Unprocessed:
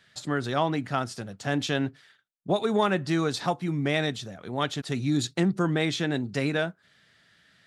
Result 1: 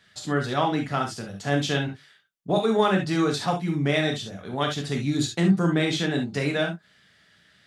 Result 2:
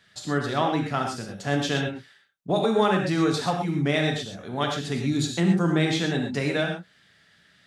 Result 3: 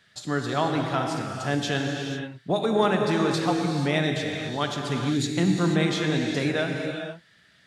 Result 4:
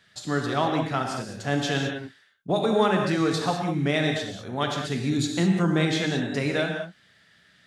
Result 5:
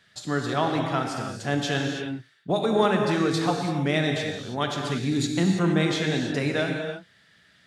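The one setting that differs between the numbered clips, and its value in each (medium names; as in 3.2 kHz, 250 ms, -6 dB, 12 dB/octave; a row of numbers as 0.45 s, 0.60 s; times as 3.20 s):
gated-style reverb, gate: 90 ms, 150 ms, 520 ms, 230 ms, 350 ms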